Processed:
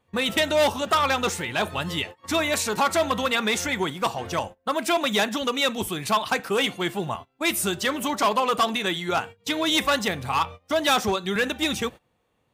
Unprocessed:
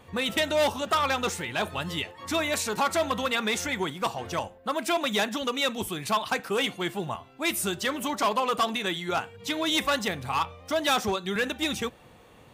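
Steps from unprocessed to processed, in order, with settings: gate -39 dBFS, range -21 dB; gain +3.5 dB

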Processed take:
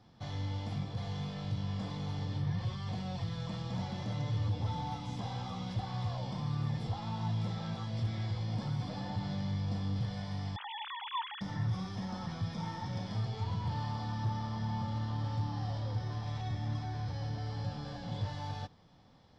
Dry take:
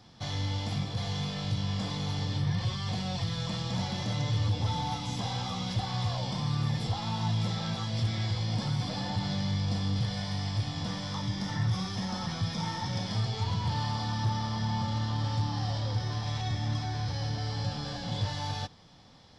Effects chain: 10.56–11.41 sine-wave speech; high shelf 2600 Hz -10.5 dB; gain -4.5 dB

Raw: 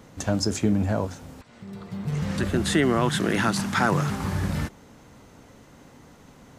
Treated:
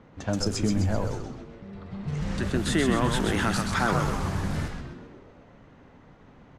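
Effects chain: frequency-shifting echo 0.129 s, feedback 54%, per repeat -110 Hz, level -4.5 dB; low-pass opened by the level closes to 2400 Hz, open at -18.5 dBFS; gain -3.5 dB

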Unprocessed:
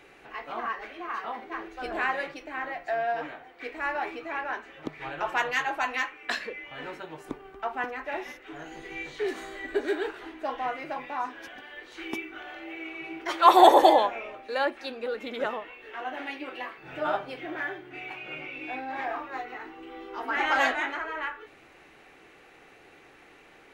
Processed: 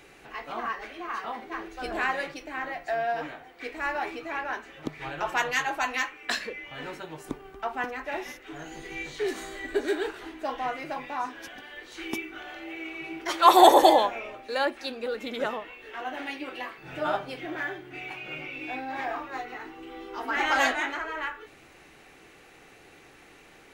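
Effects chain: tone controls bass +5 dB, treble +8 dB

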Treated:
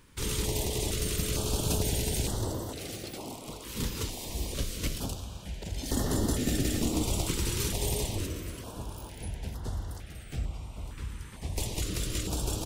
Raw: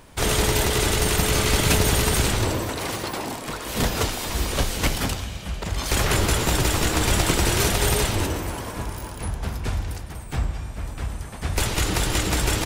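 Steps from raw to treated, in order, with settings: band-limited delay 1.082 s, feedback 70%, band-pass 1600 Hz, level -14.5 dB; dynamic EQ 1600 Hz, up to -8 dB, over -42 dBFS, Q 1.2; 5.83–7.04 small resonant body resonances 250/1800 Hz, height 13 dB; stepped notch 2.2 Hz 690–2400 Hz; gain -8.5 dB

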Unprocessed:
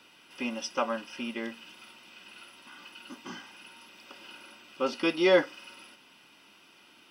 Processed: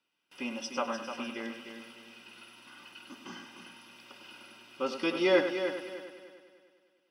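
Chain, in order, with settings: gate with hold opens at -44 dBFS; multi-head echo 0.1 s, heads first and third, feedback 48%, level -9 dB; gain -3.5 dB

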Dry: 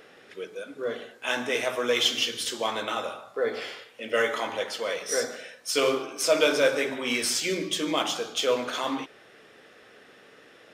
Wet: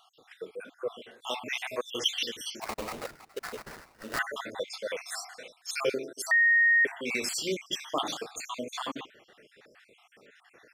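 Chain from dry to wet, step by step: random spectral dropouts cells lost 58%; 2.61–4.19 sample-rate reducer 3300 Hz, jitter 20%; 6.31–6.85 bleep 1860 Hz -16.5 dBFS; gain -2 dB

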